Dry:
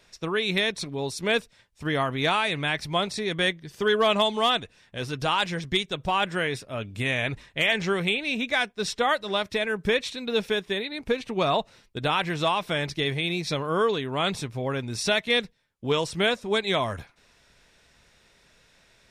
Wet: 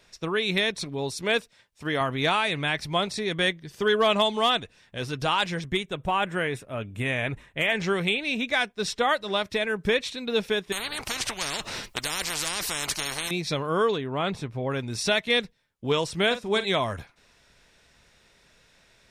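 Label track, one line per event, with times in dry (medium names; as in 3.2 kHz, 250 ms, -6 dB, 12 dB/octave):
1.220000	2.010000	bass shelf 130 Hz -10 dB
5.640000	7.760000	peaking EQ 4.8 kHz -13.5 dB 0.73 oct
10.720000	13.310000	spectrum-flattening compressor 10:1
13.960000	14.700000	treble shelf 2.6 kHz -> 4.4 kHz -12 dB
16.260000	16.660000	doubling 47 ms -12 dB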